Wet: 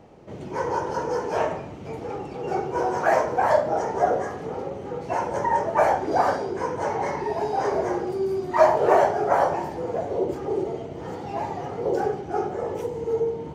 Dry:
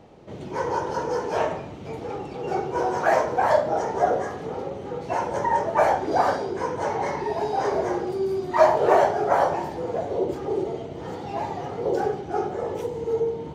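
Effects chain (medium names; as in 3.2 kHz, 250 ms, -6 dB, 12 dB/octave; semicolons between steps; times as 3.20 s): peaking EQ 3.7 kHz -5 dB 0.54 oct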